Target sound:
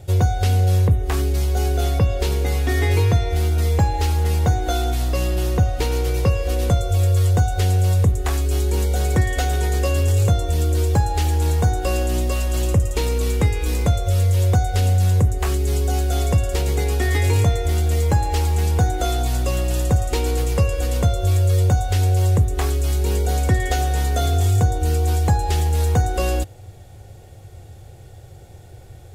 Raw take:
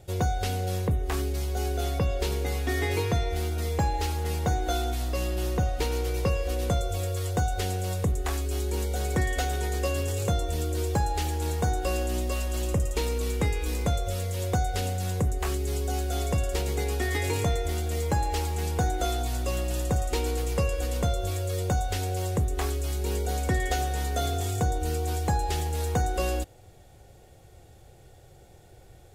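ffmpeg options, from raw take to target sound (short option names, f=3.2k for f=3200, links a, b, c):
-filter_complex "[0:a]equalizer=f=96:w=1.9:g=9.5,asplit=2[a][b];[b]alimiter=limit=-18.5dB:level=0:latency=1:release=261,volume=1dB[c];[a][c]amix=inputs=2:normalize=0"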